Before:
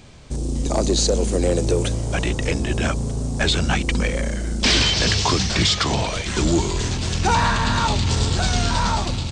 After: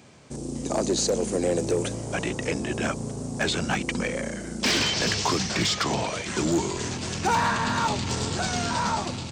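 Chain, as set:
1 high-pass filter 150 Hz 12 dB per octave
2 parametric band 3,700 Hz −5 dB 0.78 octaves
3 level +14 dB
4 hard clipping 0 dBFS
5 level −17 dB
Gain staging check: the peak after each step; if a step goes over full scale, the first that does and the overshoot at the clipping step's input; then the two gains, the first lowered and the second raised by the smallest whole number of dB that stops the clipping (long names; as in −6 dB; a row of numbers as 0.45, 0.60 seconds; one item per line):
−7.0, −7.5, +6.5, 0.0, −17.0 dBFS
step 3, 6.5 dB
step 3 +7 dB, step 5 −10 dB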